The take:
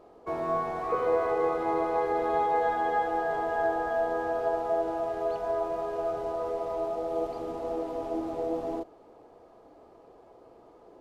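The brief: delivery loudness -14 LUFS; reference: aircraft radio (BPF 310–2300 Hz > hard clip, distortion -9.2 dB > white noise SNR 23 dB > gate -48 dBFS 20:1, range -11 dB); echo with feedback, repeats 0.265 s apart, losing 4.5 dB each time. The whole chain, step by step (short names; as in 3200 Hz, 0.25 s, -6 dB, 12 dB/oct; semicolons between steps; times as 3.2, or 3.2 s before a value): BPF 310–2300 Hz; feedback echo 0.265 s, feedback 60%, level -4.5 dB; hard clip -27.5 dBFS; white noise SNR 23 dB; gate -48 dBFS 20:1, range -11 dB; gain +17.5 dB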